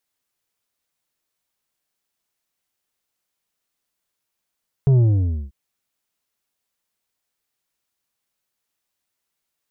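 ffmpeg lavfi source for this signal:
-f lavfi -i "aevalsrc='0.251*clip((0.64-t)/0.54,0,1)*tanh(2.24*sin(2*PI*140*0.64/log(65/140)*(exp(log(65/140)*t/0.64)-1)))/tanh(2.24)':d=0.64:s=44100"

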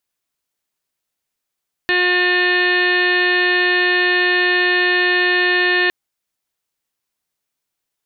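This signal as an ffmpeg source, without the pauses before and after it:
-f lavfi -i "aevalsrc='0.1*sin(2*PI*359*t)+0.0422*sin(2*PI*718*t)+0.0316*sin(2*PI*1077*t)+0.0251*sin(2*PI*1436*t)+0.178*sin(2*PI*1795*t)+0.0224*sin(2*PI*2154*t)+0.0631*sin(2*PI*2513*t)+0.0501*sin(2*PI*2872*t)+0.0178*sin(2*PI*3231*t)+0.0355*sin(2*PI*3590*t)+0.02*sin(2*PI*3949*t)+0.0316*sin(2*PI*4308*t)':d=4.01:s=44100"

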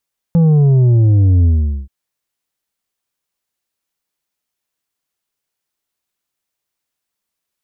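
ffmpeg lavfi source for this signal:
-f lavfi -i "aevalsrc='0.398*clip((1.53-t)/0.43,0,1)*tanh(2*sin(2*PI*170*1.53/log(65/170)*(exp(log(65/170)*t/1.53)-1)))/tanh(2)':d=1.53:s=44100"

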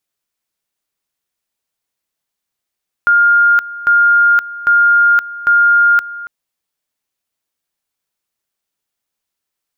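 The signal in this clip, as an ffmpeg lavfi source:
-f lavfi -i "aevalsrc='pow(10,(-6.5-17.5*gte(mod(t,0.8),0.52))/20)*sin(2*PI*1410*t)':d=3.2:s=44100"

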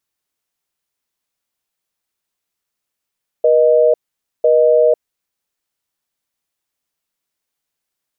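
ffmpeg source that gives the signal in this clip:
-f lavfi -i "aevalsrc='0.282*(sin(2*PI*480*t)+sin(2*PI*620*t))*clip(min(mod(t,1),0.5-mod(t,1))/0.005,0,1)':d=1.51:s=44100"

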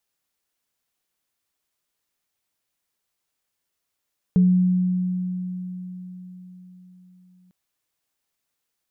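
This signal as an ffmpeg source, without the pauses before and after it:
-f lavfi -i "aevalsrc='0.251*pow(10,-3*t/4.56)*sin(2*PI*182*t)+0.0355*pow(10,-3*t/0.31)*sin(2*PI*426*t)':d=3.15:s=44100"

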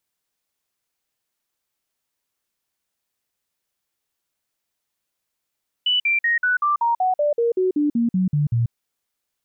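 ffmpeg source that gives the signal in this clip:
-f lavfi -i "aevalsrc='0.158*clip(min(mod(t,0.19),0.14-mod(t,0.19))/0.005,0,1)*sin(2*PI*2970*pow(2,-floor(t/0.19)/3)*mod(t,0.19))':d=2.85:s=44100"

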